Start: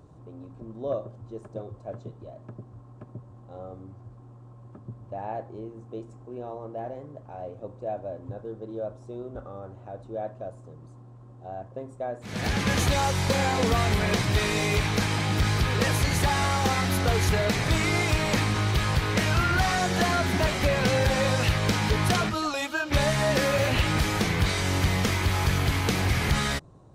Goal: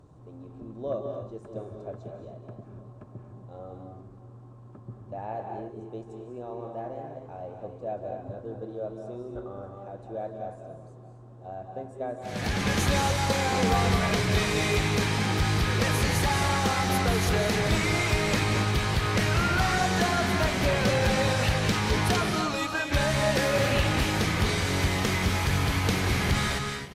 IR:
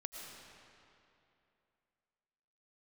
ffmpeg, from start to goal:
-filter_complex "[0:a]aecho=1:1:623|1246|1869|2492|3115:0.1|0.057|0.0325|0.0185|0.0106[a];[1:a]atrim=start_sample=2205,afade=t=out:st=0.23:d=0.01,atrim=end_sample=10584,asetrate=26901,aresample=44100[b];[a][b]afir=irnorm=-1:irlink=0"

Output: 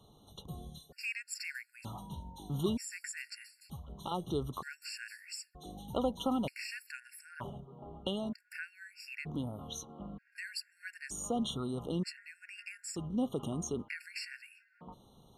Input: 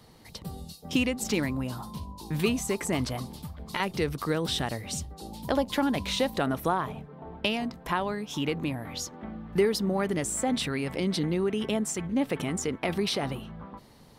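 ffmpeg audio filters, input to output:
-af "asetrate=40704,aresample=44100,afftfilt=real='re*gt(sin(2*PI*0.54*pts/sr)*(1-2*mod(floor(b*sr/1024/1400),2)),0)':imag='im*gt(sin(2*PI*0.54*pts/sr)*(1-2*mod(floor(b*sr/1024/1400),2)),0)':win_size=1024:overlap=0.75,volume=-6dB"

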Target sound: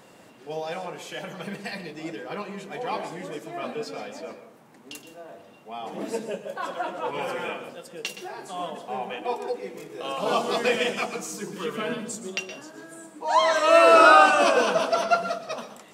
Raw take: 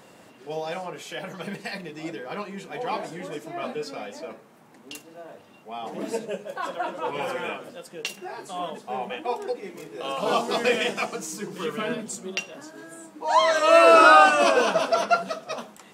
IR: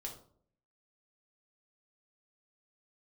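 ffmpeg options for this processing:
-filter_complex "[0:a]asplit=2[a][b];[1:a]atrim=start_sample=2205,adelay=119[c];[b][c]afir=irnorm=-1:irlink=0,volume=-8dB[d];[a][d]amix=inputs=2:normalize=0,volume=-1dB"

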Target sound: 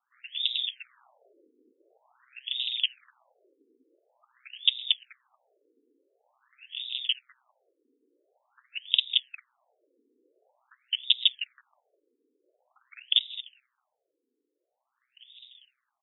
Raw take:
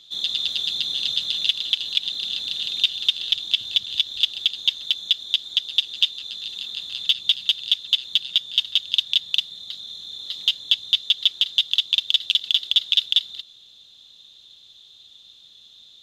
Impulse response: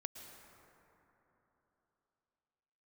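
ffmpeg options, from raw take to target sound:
-af "aeval=exprs='val(0)*sin(2*PI*63*n/s)':c=same,aecho=1:1:1024|2048|3072|4096:0.1|0.054|0.0292|0.0157,afftfilt=real='re*between(b*sr/1024,340*pow(2800/340,0.5+0.5*sin(2*PI*0.47*pts/sr))/1.41,340*pow(2800/340,0.5+0.5*sin(2*PI*0.47*pts/sr))*1.41)':imag='im*between(b*sr/1024,340*pow(2800/340,0.5+0.5*sin(2*PI*0.47*pts/sr))/1.41,340*pow(2800/340,0.5+0.5*sin(2*PI*0.47*pts/sr))*1.41)':win_size=1024:overlap=0.75"

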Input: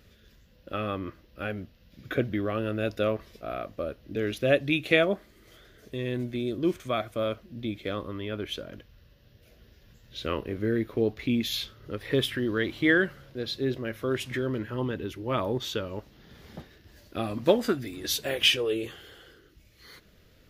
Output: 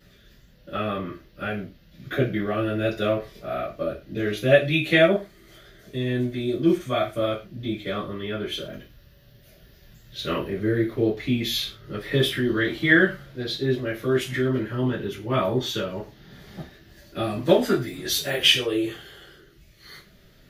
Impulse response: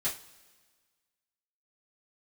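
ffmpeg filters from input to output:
-filter_complex "[0:a]asettb=1/sr,asplit=3[a][b][c];[a]atrim=end=8.564[d];[b]atrim=start=8.56:end=10.48,asetpts=PTS-STARTPTS,afade=t=in:d=0.004:c=qsin,afade=t=out:st=1.916:d=0.004:c=qsin,highshelf=f=10k:g=8.5[e];[c]atrim=start=10.476[f];[d][e]acrossfade=d=0.004:c1=hsin:c2=qsin[g];[g][f]acrossfade=d=0.004:c1=qsin:c2=hsin[h];[1:a]atrim=start_sample=2205,atrim=end_sample=6174[i];[h][i]afir=irnorm=-1:irlink=0"

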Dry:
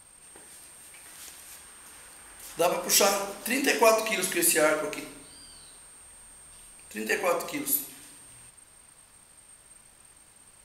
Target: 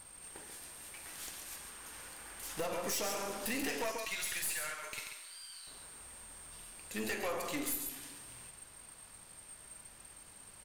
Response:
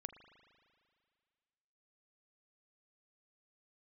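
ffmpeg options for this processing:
-filter_complex "[0:a]acompressor=threshold=-31dB:ratio=6,asettb=1/sr,asplit=3[a][b][c];[a]atrim=end=3.914[d];[b]atrim=start=3.91:end=5.67,asetpts=PTS-STARTPTS,afade=t=in:d=0.004:c=qsin,afade=t=out:st=1.756:d=0.004:c=qsin,highpass=1.4k[e];[c]atrim=start=5.666[f];[d][e]acrossfade=d=0.004:c1=hsin:c2=qsin[g];[g][f]acrossfade=d=0.004:c1=qsin:c2=hsin,asplit=2[h][i];[i]aecho=0:1:137:0.376[j];[h][j]amix=inputs=2:normalize=0,aeval=exprs='(tanh(50.1*val(0)+0.5)-tanh(0.5))/50.1':c=same,volume=2dB"

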